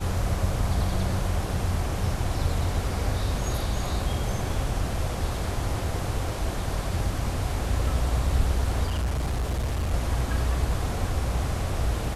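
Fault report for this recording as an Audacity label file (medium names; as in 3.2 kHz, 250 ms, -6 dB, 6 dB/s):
8.870000	9.940000	clipped -23 dBFS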